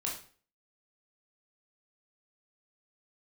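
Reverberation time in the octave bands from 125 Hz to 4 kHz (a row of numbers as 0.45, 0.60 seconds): 0.45, 0.45, 0.45, 0.40, 0.40, 0.40 seconds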